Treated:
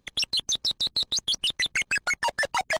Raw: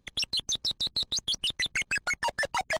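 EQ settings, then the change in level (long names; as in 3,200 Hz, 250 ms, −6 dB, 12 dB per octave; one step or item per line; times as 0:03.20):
low-shelf EQ 240 Hz −5.5 dB
+3.5 dB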